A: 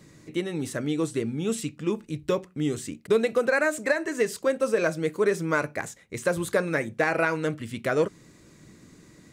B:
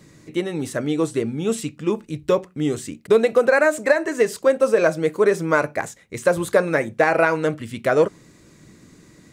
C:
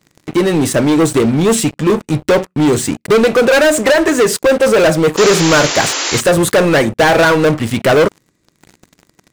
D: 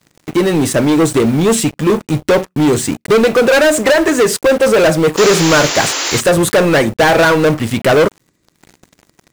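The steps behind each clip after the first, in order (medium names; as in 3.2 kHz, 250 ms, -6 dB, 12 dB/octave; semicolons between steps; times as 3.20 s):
dynamic bell 710 Hz, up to +6 dB, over -36 dBFS, Q 0.82; trim +3 dB
waveshaping leveller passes 5; painted sound noise, 5.17–6.21 s, 260–7500 Hz -16 dBFS; trim -2.5 dB
block-companded coder 5-bit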